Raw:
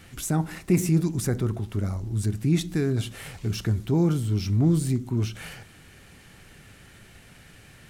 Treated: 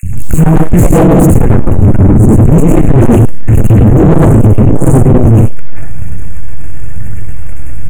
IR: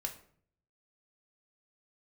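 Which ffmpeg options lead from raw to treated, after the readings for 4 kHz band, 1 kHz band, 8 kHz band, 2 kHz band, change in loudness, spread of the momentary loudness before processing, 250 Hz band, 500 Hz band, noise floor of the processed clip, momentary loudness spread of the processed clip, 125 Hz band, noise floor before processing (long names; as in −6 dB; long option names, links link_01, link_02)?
can't be measured, +23.5 dB, +10.5 dB, +14.0 dB, +19.0 dB, 10 LU, +18.5 dB, +21.0 dB, −4 dBFS, 19 LU, +19.5 dB, −51 dBFS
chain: -filter_complex "[0:a]aeval=exprs='max(val(0),0)':channel_layout=same,aphaser=in_gain=1:out_gain=1:delay=3.7:decay=0.53:speed=1:type=triangular,acrossover=split=250|2800[link_01][link_02][link_03];[link_01]adelay=30[link_04];[link_02]adelay=130[link_05];[link_04][link_05][link_03]amix=inputs=3:normalize=0,asplit=2[link_06][link_07];[1:a]atrim=start_sample=2205,adelay=99[link_08];[link_07][link_08]afir=irnorm=-1:irlink=0,volume=0.5dB[link_09];[link_06][link_09]amix=inputs=2:normalize=0,acontrast=43,afftfilt=real='re*(1-between(b*sr/4096,2800,6400))':imag='im*(1-between(b*sr/4096,2800,6400))':win_size=4096:overlap=0.75,bass=frequency=250:gain=10,treble=frequency=4000:gain=1,aeval=exprs='0.473*sin(PI/2*2.24*val(0)/0.473)':channel_layout=same,lowshelf=frequency=450:gain=8.5,acontrast=42,volume=-1dB"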